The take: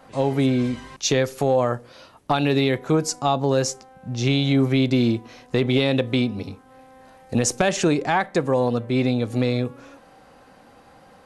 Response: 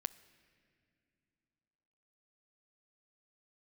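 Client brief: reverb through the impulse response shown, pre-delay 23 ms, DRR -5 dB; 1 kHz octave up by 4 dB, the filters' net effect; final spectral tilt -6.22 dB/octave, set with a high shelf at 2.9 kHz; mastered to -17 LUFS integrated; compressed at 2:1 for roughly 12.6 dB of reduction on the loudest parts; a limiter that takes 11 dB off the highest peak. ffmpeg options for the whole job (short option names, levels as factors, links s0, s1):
-filter_complex "[0:a]equalizer=f=1000:t=o:g=6.5,highshelf=f=2900:g=-8.5,acompressor=threshold=0.0141:ratio=2,alimiter=level_in=1.33:limit=0.0631:level=0:latency=1,volume=0.75,asplit=2[s0][s1];[1:a]atrim=start_sample=2205,adelay=23[s2];[s1][s2]afir=irnorm=-1:irlink=0,volume=2.11[s3];[s0][s3]amix=inputs=2:normalize=0,volume=4.73"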